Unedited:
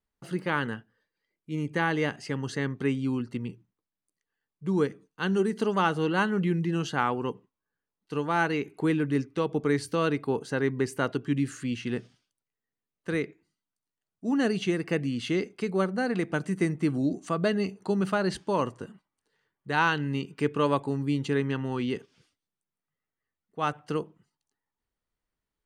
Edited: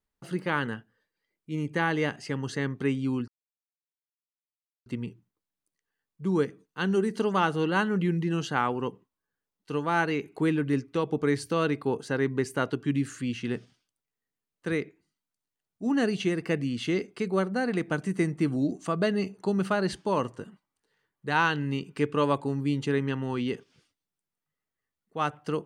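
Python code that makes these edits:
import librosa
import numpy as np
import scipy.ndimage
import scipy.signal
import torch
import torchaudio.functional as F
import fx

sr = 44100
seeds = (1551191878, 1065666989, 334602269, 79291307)

y = fx.edit(x, sr, fx.insert_silence(at_s=3.28, length_s=1.58), tone=tone)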